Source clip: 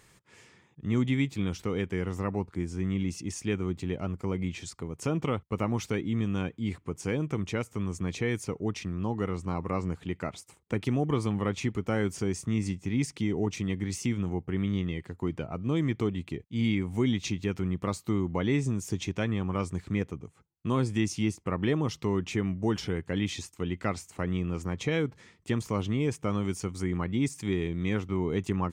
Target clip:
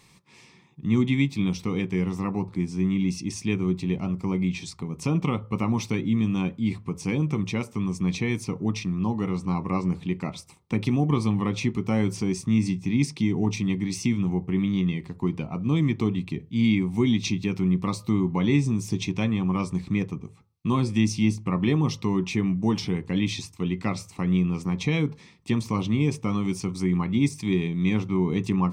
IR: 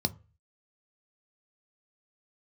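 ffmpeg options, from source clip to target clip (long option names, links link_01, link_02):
-filter_complex "[0:a]asplit=2[link_01][link_02];[link_02]highpass=frequency=560:poles=1[link_03];[1:a]atrim=start_sample=2205,lowpass=6800[link_04];[link_03][link_04]afir=irnorm=-1:irlink=0,volume=-2dB[link_05];[link_01][link_05]amix=inputs=2:normalize=0"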